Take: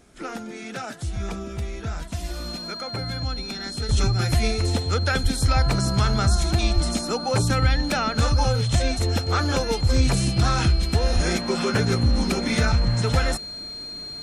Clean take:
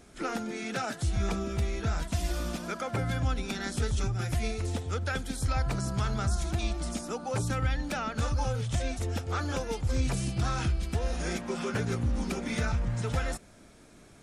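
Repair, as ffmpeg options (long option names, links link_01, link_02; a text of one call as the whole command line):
ffmpeg -i in.wav -filter_complex "[0:a]bandreject=frequency=4200:width=30,asplit=3[link_01][link_02][link_03];[link_01]afade=type=out:start_time=5.22:duration=0.02[link_04];[link_02]highpass=frequency=140:width=0.5412,highpass=frequency=140:width=1.3066,afade=type=in:start_time=5.22:duration=0.02,afade=type=out:start_time=5.34:duration=0.02[link_05];[link_03]afade=type=in:start_time=5.34:duration=0.02[link_06];[link_04][link_05][link_06]amix=inputs=3:normalize=0,asplit=3[link_07][link_08][link_09];[link_07]afade=type=out:start_time=6.74:duration=0.02[link_10];[link_08]highpass=frequency=140:width=0.5412,highpass=frequency=140:width=1.3066,afade=type=in:start_time=6.74:duration=0.02,afade=type=out:start_time=6.86:duration=0.02[link_11];[link_09]afade=type=in:start_time=6.86:duration=0.02[link_12];[link_10][link_11][link_12]amix=inputs=3:normalize=0,asplit=3[link_13][link_14][link_15];[link_13]afade=type=out:start_time=11.14:duration=0.02[link_16];[link_14]highpass=frequency=140:width=0.5412,highpass=frequency=140:width=1.3066,afade=type=in:start_time=11.14:duration=0.02,afade=type=out:start_time=11.26:duration=0.02[link_17];[link_15]afade=type=in:start_time=11.26:duration=0.02[link_18];[link_16][link_17][link_18]amix=inputs=3:normalize=0,asetnsamples=nb_out_samples=441:pad=0,asendcmd='3.89 volume volume -9dB',volume=0dB" out.wav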